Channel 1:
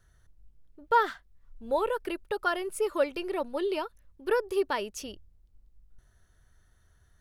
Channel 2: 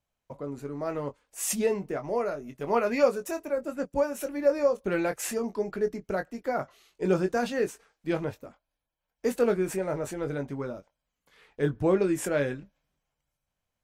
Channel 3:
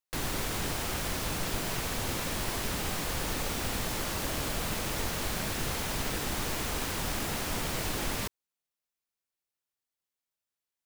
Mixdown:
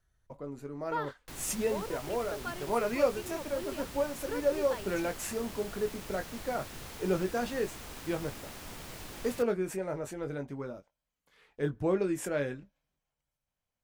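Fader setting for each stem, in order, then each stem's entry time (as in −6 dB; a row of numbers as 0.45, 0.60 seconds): −11.5, −5.0, −12.0 decibels; 0.00, 0.00, 1.15 seconds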